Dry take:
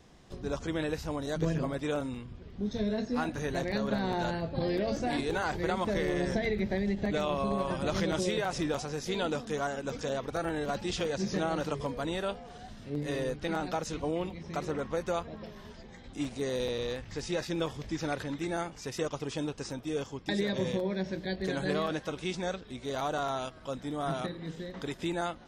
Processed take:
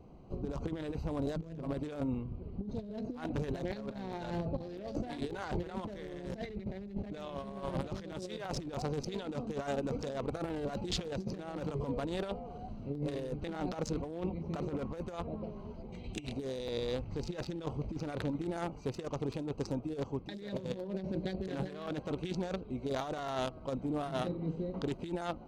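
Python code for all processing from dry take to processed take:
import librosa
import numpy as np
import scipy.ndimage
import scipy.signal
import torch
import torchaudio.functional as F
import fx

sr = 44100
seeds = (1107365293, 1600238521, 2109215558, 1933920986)

y = fx.chain(x, sr, fx.high_shelf_res(hz=2000.0, db=8.0, q=3.0),
    fx.notch_comb(f0_hz=270.0),
    fx.over_compress(threshold_db=-39.0, ratio=-0.5), at=(15.92, 16.33))
y = fx.wiener(y, sr, points=25)
y = fx.peak_eq(y, sr, hz=4100.0, db=2.5, octaves=0.76)
y = fx.over_compress(y, sr, threshold_db=-36.0, ratio=-0.5)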